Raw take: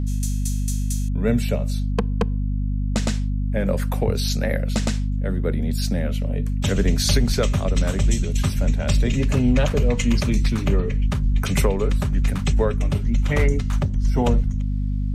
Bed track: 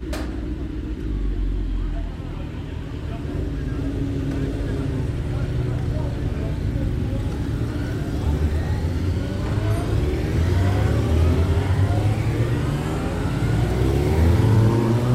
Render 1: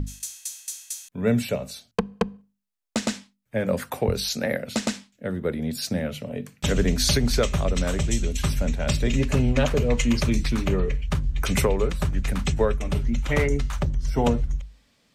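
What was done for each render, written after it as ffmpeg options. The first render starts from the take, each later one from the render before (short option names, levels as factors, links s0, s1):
-af "bandreject=f=50:t=h:w=6,bandreject=f=100:t=h:w=6,bandreject=f=150:t=h:w=6,bandreject=f=200:t=h:w=6,bandreject=f=250:t=h:w=6"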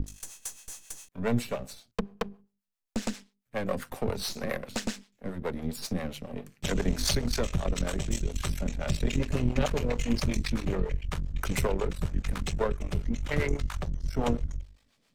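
-filter_complex "[0:a]aeval=exprs='if(lt(val(0),0),0.251*val(0),val(0))':c=same,acrossover=split=430[s0][s1];[s0]aeval=exprs='val(0)*(1-0.7/2+0.7/2*cos(2*PI*7.4*n/s))':c=same[s2];[s1]aeval=exprs='val(0)*(1-0.7/2-0.7/2*cos(2*PI*7.4*n/s))':c=same[s3];[s2][s3]amix=inputs=2:normalize=0"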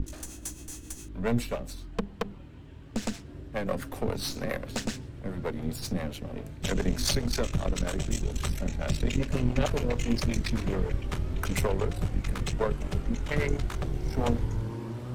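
-filter_complex "[1:a]volume=0.133[s0];[0:a][s0]amix=inputs=2:normalize=0"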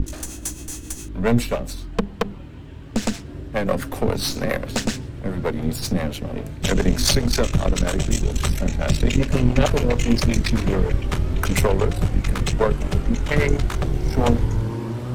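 -af "volume=2.82"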